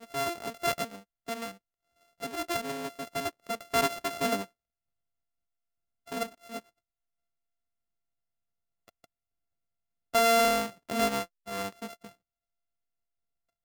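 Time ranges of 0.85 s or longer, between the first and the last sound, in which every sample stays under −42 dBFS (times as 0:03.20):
0:04.45–0:06.07
0:06.59–0:08.88
0:09.04–0:10.14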